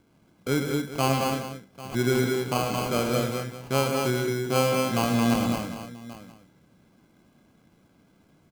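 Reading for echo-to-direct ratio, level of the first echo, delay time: −1.0 dB, −7.5 dB, 106 ms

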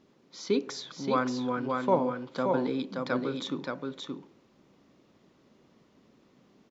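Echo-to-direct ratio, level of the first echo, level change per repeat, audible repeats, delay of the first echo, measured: −4.0 dB, −4.0 dB, repeats not evenly spaced, 1, 575 ms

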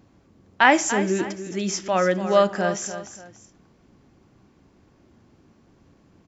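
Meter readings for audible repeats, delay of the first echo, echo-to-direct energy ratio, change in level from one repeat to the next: 2, 291 ms, −11.0 dB, −9.0 dB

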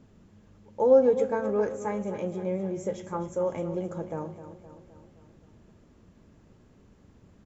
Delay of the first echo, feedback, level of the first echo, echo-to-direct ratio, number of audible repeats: 260 ms, 56%, −12.0 dB, −10.5 dB, 5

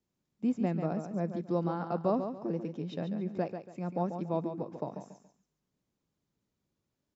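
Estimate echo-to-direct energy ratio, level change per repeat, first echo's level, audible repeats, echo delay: −7.5 dB, −10.5 dB, −8.0 dB, 3, 141 ms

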